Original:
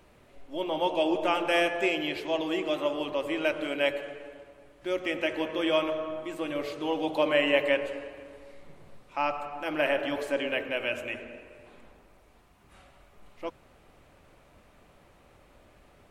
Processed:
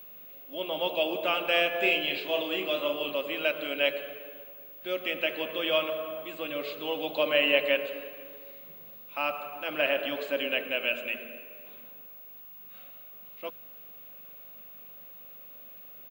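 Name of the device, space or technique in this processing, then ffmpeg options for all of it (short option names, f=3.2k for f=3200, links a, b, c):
old television with a line whistle: -filter_complex "[0:a]asplit=3[a][b][c];[a]afade=t=out:st=1.73:d=0.02[d];[b]asplit=2[e][f];[f]adelay=35,volume=-5.5dB[g];[e][g]amix=inputs=2:normalize=0,afade=t=in:st=1.73:d=0.02,afade=t=out:st=3.17:d=0.02[h];[c]afade=t=in:st=3.17:d=0.02[i];[d][h][i]amix=inputs=3:normalize=0,highpass=f=170:w=0.5412,highpass=f=170:w=1.3066,equalizer=f=330:t=q:w=4:g=-9,equalizer=f=880:t=q:w=4:g=-8,equalizer=f=1.9k:t=q:w=4:g=-4,equalizer=f=2.7k:t=q:w=4:g=6,equalizer=f=3.8k:t=q:w=4:g=6,equalizer=f=5.8k:t=q:w=4:g=-10,lowpass=f=6.9k:w=0.5412,lowpass=f=6.9k:w=1.3066,aeval=exprs='val(0)+0.00562*sin(2*PI*15625*n/s)':c=same"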